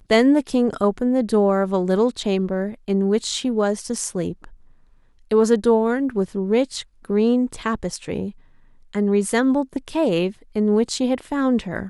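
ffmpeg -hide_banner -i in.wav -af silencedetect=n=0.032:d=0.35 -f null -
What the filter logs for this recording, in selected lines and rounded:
silence_start: 4.44
silence_end: 5.31 | silence_duration: 0.87
silence_start: 8.30
silence_end: 8.93 | silence_duration: 0.64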